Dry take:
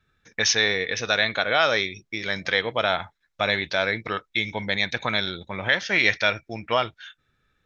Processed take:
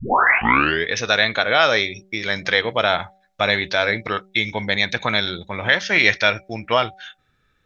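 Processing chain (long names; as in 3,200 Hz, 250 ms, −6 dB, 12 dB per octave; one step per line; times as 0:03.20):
turntable start at the beginning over 0.90 s
hum removal 191.2 Hz, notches 4
level +4.5 dB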